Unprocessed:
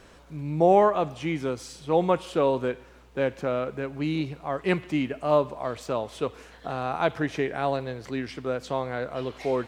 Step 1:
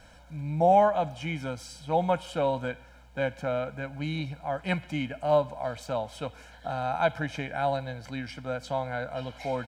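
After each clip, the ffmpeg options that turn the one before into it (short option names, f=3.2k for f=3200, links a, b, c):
-af "aecho=1:1:1.3:0.86,volume=-4dB"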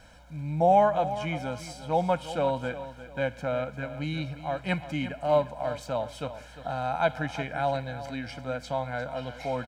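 -af "aecho=1:1:351|702|1053:0.224|0.0761|0.0259"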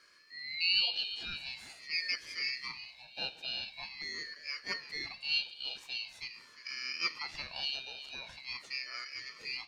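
-af "afftfilt=real='real(if(lt(b,272),68*(eq(floor(b/68),0)*1+eq(floor(b/68),1)*3+eq(floor(b/68),2)*0+eq(floor(b/68),3)*2)+mod(b,68),b),0)':imag='imag(if(lt(b,272),68*(eq(floor(b/68),0)*1+eq(floor(b/68),1)*3+eq(floor(b/68),2)*0+eq(floor(b/68),3)*2)+mod(b,68),b),0)':win_size=2048:overlap=0.75,flanger=delay=9.4:depth=9.7:regen=-78:speed=0.49:shape=triangular,aeval=exprs='val(0)*sin(2*PI*990*n/s+990*0.35/0.44*sin(2*PI*0.44*n/s))':c=same,volume=-2.5dB"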